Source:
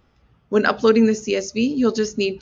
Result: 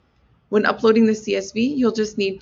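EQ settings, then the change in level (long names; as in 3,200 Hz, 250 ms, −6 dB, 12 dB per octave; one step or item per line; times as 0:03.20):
high-pass filter 46 Hz
low-pass filter 6,200 Hz 12 dB per octave
0.0 dB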